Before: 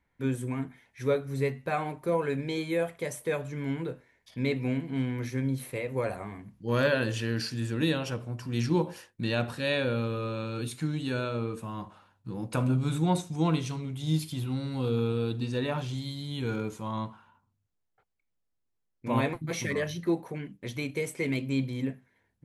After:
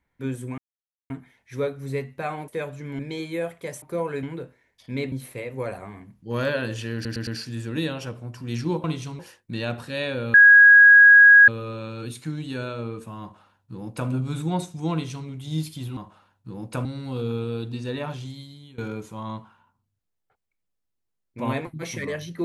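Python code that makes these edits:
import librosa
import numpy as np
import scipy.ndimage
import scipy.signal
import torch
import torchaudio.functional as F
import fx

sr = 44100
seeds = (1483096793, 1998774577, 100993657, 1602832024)

y = fx.edit(x, sr, fx.insert_silence(at_s=0.58, length_s=0.52),
    fx.swap(start_s=1.96, length_s=0.41, other_s=3.2, other_length_s=0.51),
    fx.cut(start_s=4.6, length_s=0.9),
    fx.stutter(start_s=7.32, slice_s=0.11, count=4),
    fx.insert_tone(at_s=10.04, length_s=1.14, hz=1650.0, db=-7.5),
    fx.duplicate(start_s=11.77, length_s=0.88, to_s=14.53),
    fx.duplicate(start_s=13.48, length_s=0.35, to_s=8.89),
    fx.fade_out_to(start_s=15.82, length_s=0.64, floor_db=-20.0), tone=tone)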